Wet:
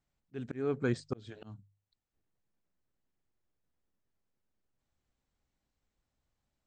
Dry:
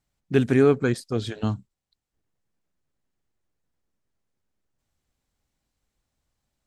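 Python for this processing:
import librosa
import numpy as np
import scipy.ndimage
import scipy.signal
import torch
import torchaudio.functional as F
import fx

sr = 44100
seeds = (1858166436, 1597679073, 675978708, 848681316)

y = scipy.signal.sosfilt(scipy.signal.butter(16, 8400.0, 'lowpass', fs=sr, output='sos'), x)
y = fx.high_shelf(y, sr, hz=3800.0, db=-6.0)
y = fx.hum_notches(y, sr, base_hz=50, count=3)
y = fx.auto_swell(y, sr, attack_ms=542.0)
y = y * 10.0 ** (-4.0 / 20.0)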